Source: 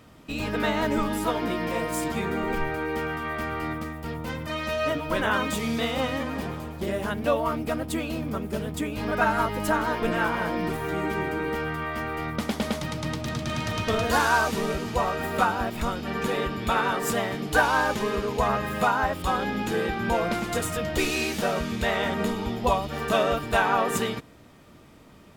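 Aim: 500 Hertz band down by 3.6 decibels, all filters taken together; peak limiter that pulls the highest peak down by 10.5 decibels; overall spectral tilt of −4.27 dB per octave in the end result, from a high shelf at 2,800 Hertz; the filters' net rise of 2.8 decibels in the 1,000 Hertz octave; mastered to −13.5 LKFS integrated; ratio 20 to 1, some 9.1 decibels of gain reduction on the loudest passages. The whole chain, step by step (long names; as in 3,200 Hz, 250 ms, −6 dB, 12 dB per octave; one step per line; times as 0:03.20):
parametric band 500 Hz −6.5 dB
parametric band 1,000 Hz +6 dB
high-shelf EQ 2,800 Hz −5 dB
downward compressor 20 to 1, threshold −24 dBFS
level +20 dB
brickwall limiter −5 dBFS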